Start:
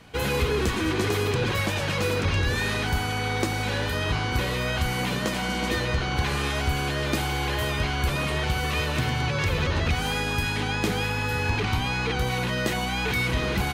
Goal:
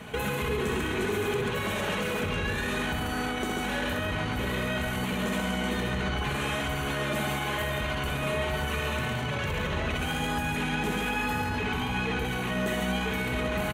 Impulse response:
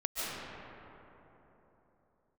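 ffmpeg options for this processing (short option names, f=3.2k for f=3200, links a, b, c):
-filter_complex "[0:a]equalizer=f=4.9k:t=o:w=0.47:g=-13.5,aecho=1:1:64|138:0.531|0.596,acontrast=60,alimiter=limit=-23.5dB:level=0:latency=1:release=53,highpass=48,aecho=1:1:4.7:0.42,asplit=2[a][b];[1:a]atrim=start_sample=2205[c];[b][c]afir=irnorm=-1:irlink=0,volume=-14.5dB[d];[a][d]amix=inputs=2:normalize=0"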